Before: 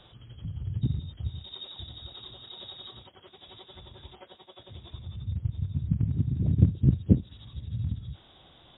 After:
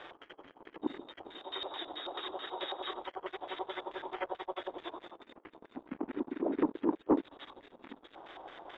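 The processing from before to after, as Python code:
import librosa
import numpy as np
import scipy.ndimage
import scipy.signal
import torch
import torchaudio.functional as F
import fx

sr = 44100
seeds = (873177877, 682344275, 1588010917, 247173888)

y = scipy.signal.sosfilt(scipy.signal.butter(8, 300.0, 'highpass', fs=sr, output='sos'), x)
y = fx.leveller(y, sr, passes=3)
y = fx.filter_lfo_lowpass(y, sr, shape='square', hz=4.6, low_hz=910.0, high_hz=1900.0, q=2.1)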